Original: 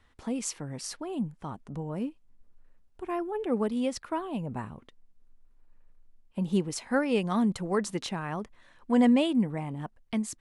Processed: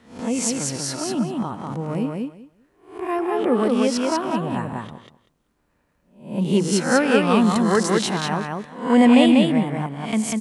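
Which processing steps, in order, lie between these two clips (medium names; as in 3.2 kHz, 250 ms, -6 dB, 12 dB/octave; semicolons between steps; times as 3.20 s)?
reverse spectral sustain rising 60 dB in 0.46 s; high-pass 110 Hz 12 dB/octave; feedback delay 193 ms, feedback 16%, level -3 dB; trim +7.5 dB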